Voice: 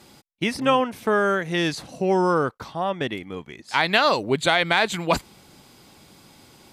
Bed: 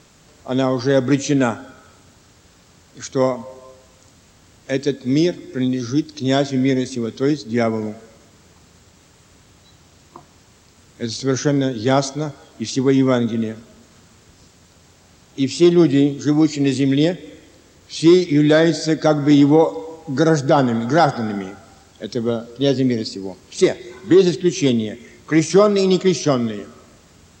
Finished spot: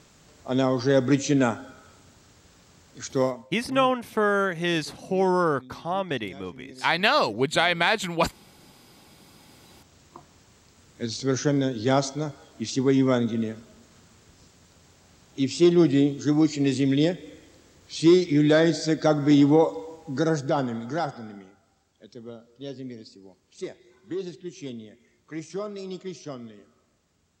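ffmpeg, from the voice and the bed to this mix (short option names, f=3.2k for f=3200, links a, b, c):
-filter_complex "[0:a]adelay=3100,volume=-2dB[a];[1:a]volume=18.5dB,afade=t=out:st=3.15:d=0.38:silence=0.0630957,afade=t=in:st=9.1:d=0.86:silence=0.0707946,afade=t=out:st=19.58:d=1.9:silence=0.188365[b];[a][b]amix=inputs=2:normalize=0"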